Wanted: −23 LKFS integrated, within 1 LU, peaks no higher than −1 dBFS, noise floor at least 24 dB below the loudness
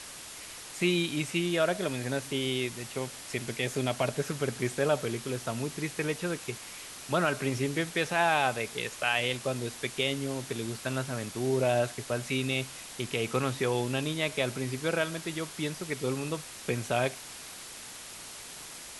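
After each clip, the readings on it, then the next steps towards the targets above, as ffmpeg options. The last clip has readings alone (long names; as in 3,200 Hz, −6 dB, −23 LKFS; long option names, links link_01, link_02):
background noise floor −45 dBFS; target noise floor −55 dBFS; integrated loudness −31.0 LKFS; sample peak −12.5 dBFS; target loudness −23.0 LKFS
→ -af "afftdn=noise_reduction=10:noise_floor=-45"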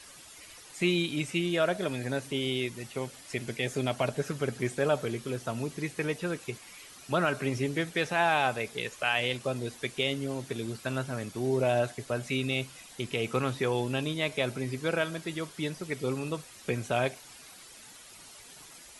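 background noise floor −51 dBFS; target noise floor −55 dBFS
→ -af "afftdn=noise_reduction=6:noise_floor=-51"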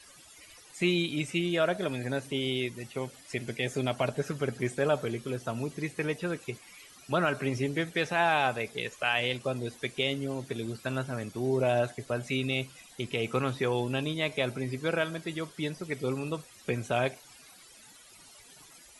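background noise floor −54 dBFS; target noise floor −55 dBFS
→ -af "afftdn=noise_reduction=6:noise_floor=-54"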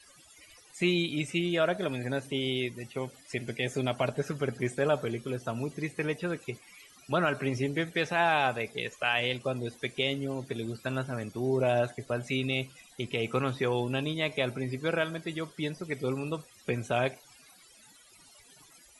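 background noise floor −58 dBFS; integrated loudness −31.0 LKFS; sample peak −13.0 dBFS; target loudness −23.0 LKFS
→ -af "volume=8dB"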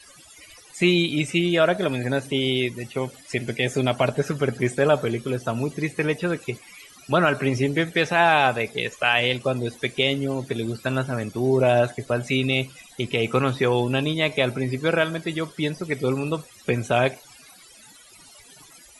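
integrated loudness −23.0 LKFS; sample peak −5.0 dBFS; background noise floor −50 dBFS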